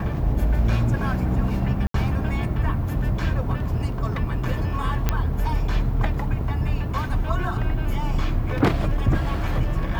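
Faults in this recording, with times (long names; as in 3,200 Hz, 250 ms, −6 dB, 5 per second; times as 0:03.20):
0:01.87–0:01.94: drop-out 73 ms
0:05.09: click −7 dBFS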